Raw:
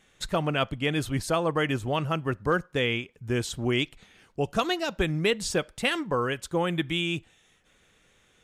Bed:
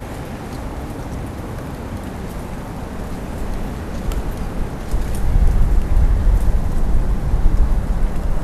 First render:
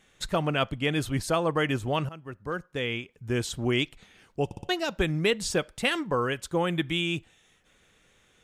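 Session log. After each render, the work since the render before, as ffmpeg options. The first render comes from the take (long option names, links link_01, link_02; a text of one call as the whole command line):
ffmpeg -i in.wav -filter_complex "[0:a]asplit=6[link_01][link_02][link_03][link_04][link_05][link_06];[link_01]atrim=end=2.09,asetpts=PTS-STARTPTS,afade=type=out:start_time=2.086:duration=0.004:curve=hsin:silence=0.133352[link_07];[link_02]atrim=start=2.09:end=4.512,asetpts=PTS-STARTPTS,afade=type=in:duration=1.36:silence=0.133352[link_08];[link_03]atrim=start=4.448:end=4.512[link_09];[link_04]atrim=start=4.448:end=4.512[link_10];[link_05]atrim=start=4.448:end=4.512[link_11];[link_06]atrim=start=4.688[link_12];[link_07][link_08]concat=n=2:v=0:a=1[link_13];[link_13][link_09]acrossfade=duration=0.004:curve1=hsin:curve2=hsin[link_14];[link_14][link_10]acrossfade=duration=0.004:curve1=hsin:curve2=hsin[link_15];[link_15][link_11]acrossfade=duration=0.004:curve1=hsin:curve2=hsin[link_16];[link_16][link_12]acrossfade=duration=0.004:curve1=hsin:curve2=hsin" out.wav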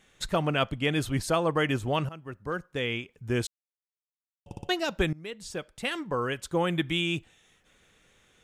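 ffmpeg -i in.wav -filter_complex "[0:a]asplit=4[link_01][link_02][link_03][link_04];[link_01]atrim=end=3.47,asetpts=PTS-STARTPTS,afade=type=out:start_time=3.466:duration=0.004:curve=hsin[link_05];[link_02]atrim=start=3.47:end=4.46,asetpts=PTS-STARTPTS,volume=0[link_06];[link_03]atrim=start=4.46:end=5.13,asetpts=PTS-STARTPTS,afade=type=in:duration=0.004:curve=hsin,afade=type=out:start_time=0.666:duration=0.004:curve=hsin:silence=0.0891251[link_07];[link_04]atrim=start=5.13,asetpts=PTS-STARTPTS,afade=type=in:duration=1.49:silence=0.0891251[link_08];[link_05][link_06][link_07][link_08]concat=n=4:v=0:a=1" out.wav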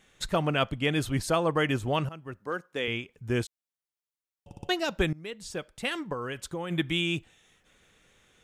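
ffmpeg -i in.wav -filter_complex "[0:a]asettb=1/sr,asplit=3[link_01][link_02][link_03];[link_01]atrim=end=2.394[link_04];[link_02]atrim=start=2.39:end=2.88,asetpts=PTS-STARTPTS,afade=type=in:duration=0.004:curve=qsin,afade=type=out:start_time=0.486:duration=0.004:curve=qsin,highpass=240[link_05];[link_03]atrim=start=2.876[link_06];[link_04][link_05]acrossfade=duration=0.004:curve1=hsin:curve2=qsin[link_07];[link_07][link_06]acrossfade=duration=0.004:curve1=qsin:curve2=hsin,asettb=1/sr,asplit=3[link_08][link_09][link_10];[link_08]atrim=end=3.434[link_11];[link_09]atrim=start=3.43:end=4.63,asetpts=PTS-STARTPTS,afade=type=in:duration=0.004:curve=qsin,afade=type=out:start_time=1.196:duration=0.004:curve=qsin,acompressor=threshold=-41dB:ratio=3:attack=3.2:release=140:knee=1:detection=peak[link_12];[link_10]atrim=start=4.626[link_13];[link_11][link_12]acrossfade=duration=0.004:curve1=hsin:curve2=qsin[link_14];[link_14][link_13]acrossfade=duration=0.004:curve1=qsin:curve2=hsin,asplit=3[link_15][link_16][link_17];[link_15]afade=type=out:start_time=6.12:duration=0.02[link_18];[link_16]acompressor=threshold=-30dB:ratio=6:attack=3.2:release=140:knee=1:detection=peak,afade=type=in:start_time=6.12:duration=0.02,afade=type=out:start_time=6.7:duration=0.02[link_19];[link_17]afade=type=in:start_time=6.7:duration=0.02[link_20];[link_18][link_19][link_20]amix=inputs=3:normalize=0" out.wav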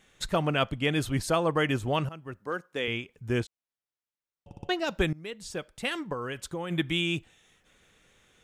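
ffmpeg -i in.wav -filter_complex "[0:a]asettb=1/sr,asplit=3[link_01][link_02][link_03];[link_01]atrim=end=3.404[link_04];[link_02]atrim=start=3.4:end=4.87,asetpts=PTS-STARTPTS,afade=type=in:duration=0.004:curve=qsin,afade=type=out:start_time=1.466:duration=0.004:curve=qsin,lowpass=frequency=3300:poles=1[link_05];[link_03]atrim=start=4.866[link_06];[link_04][link_05]acrossfade=duration=0.004:curve1=hsin:curve2=qsin[link_07];[link_07][link_06]acrossfade=duration=0.004:curve1=qsin:curve2=hsin" out.wav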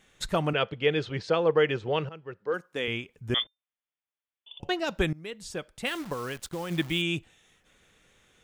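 ffmpeg -i in.wav -filter_complex "[0:a]asettb=1/sr,asplit=3[link_01][link_02][link_03];[link_01]atrim=end=0.534[link_04];[link_02]atrim=start=0.53:end=2.54,asetpts=PTS-STARTPTS,afade=type=in:duration=0.004:curve=qsin,afade=type=out:start_time=2.006:duration=0.004:curve=qsin,highpass=150,equalizer=frequency=260:width_type=q:width=4:gain=-10,equalizer=frequency=460:width_type=q:width=4:gain=9,equalizer=frequency=660:width_type=q:width=4:gain=-4,equalizer=frequency=1100:width_type=q:width=4:gain=-4,lowpass=frequency=4800:width=0.5412,lowpass=frequency=4800:width=1.3066[link_05];[link_03]atrim=start=2.536[link_06];[link_04][link_05]acrossfade=duration=0.004:curve1=hsin:curve2=qsin[link_07];[link_07][link_06]acrossfade=duration=0.004:curve1=qsin:curve2=hsin,asettb=1/sr,asplit=3[link_08][link_09][link_10];[link_08]atrim=end=3.344[link_11];[link_09]atrim=start=3.34:end=4.6,asetpts=PTS-STARTPTS,afade=type=in:duration=0.004:curve=qsin,afade=type=out:start_time=1.256:duration=0.004:curve=qsin,lowpass=frequency=3100:width_type=q:width=0.5098,lowpass=frequency=3100:width_type=q:width=0.6013,lowpass=frequency=3100:width_type=q:width=0.9,lowpass=frequency=3100:width_type=q:width=2.563,afreqshift=-3600[link_12];[link_10]atrim=start=4.596[link_13];[link_11][link_12]acrossfade=duration=0.004:curve1=hsin:curve2=qsin[link_14];[link_14][link_13]acrossfade=duration=0.004:curve1=qsin:curve2=hsin,asettb=1/sr,asplit=3[link_15][link_16][link_17];[link_15]atrim=end=5.864[link_18];[link_16]atrim=start=5.86:end=7.02,asetpts=PTS-STARTPTS,afade=type=in:duration=0.004:curve=qsin,afade=type=out:start_time=1.156:duration=0.004:curve=qsin,acrusher=bits=8:dc=4:mix=0:aa=0.000001[link_19];[link_17]atrim=start=7.016[link_20];[link_18][link_19]acrossfade=duration=0.004:curve1=hsin:curve2=qsin[link_21];[link_21][link_20]acrossfade=duration=0.004:curve1=qsin:curve2=hsin" out.wav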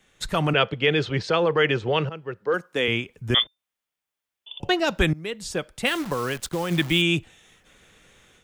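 ffmpeg -i in.wav -filter_complex "[0:a]acrossover=split=130|1000|1700[link_01][link_02][link_03][link_04];[link_02]alimiter=limit=-24dB:level=0:latency=1:release=21[link_05];[link_01][link_05][link_03][link_04]amix=inputs=4:normalize=0,dynaudnorm=framelen=190:gausssize=3:maxgain=7.5dB" out.wav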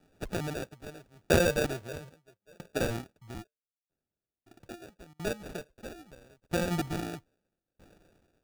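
ffmpeg -i in.wav -af "acrusher=samples=42:mix=1:aa=0.000001,aeval=exprs='val(0)*pow(10,-36*if(lt(mod(0.77*n/s,1),2*abs(0.77)/1000),1-mod(0.77*n/s,1)/(2*abs(0.77)/1000),(mod(0.77*n/s,1)-2*abs(0.77)/1000)/(1-2*abs(0.77)/1000))/20)':channel_layout=same" out.wav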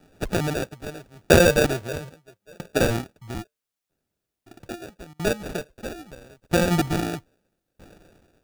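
ffmpeg -i in.wav -af "volume=9.5dB,alimiter=limit=-3dB:level=0:latency=1" out.wav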